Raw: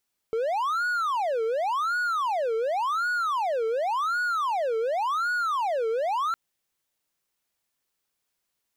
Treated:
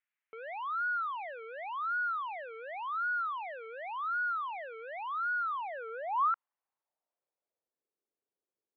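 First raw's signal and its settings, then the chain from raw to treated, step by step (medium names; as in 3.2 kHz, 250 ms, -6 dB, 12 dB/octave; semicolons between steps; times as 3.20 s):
siren wail 444–1460 Hz 0.9 per s triangle -21.5 dBFS 6.01 s
band-pass sweep 2 kHz -> 400 Hz, 5.43–7.89 s; low-pass 2.9 kHz 24 dB/octave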